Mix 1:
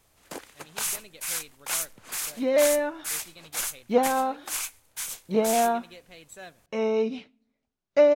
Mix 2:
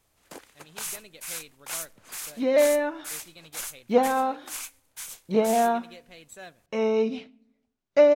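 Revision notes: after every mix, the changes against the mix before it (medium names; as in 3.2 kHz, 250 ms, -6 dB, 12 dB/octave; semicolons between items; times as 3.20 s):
first sound -5.0 dB; second sound: send +9.5 dB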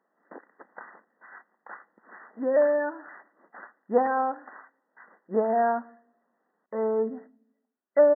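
speech: muted; second sound: add bass shelf 250 Hz -9 dB; master: add brick-wall FIR band-pass 180–2000 Hz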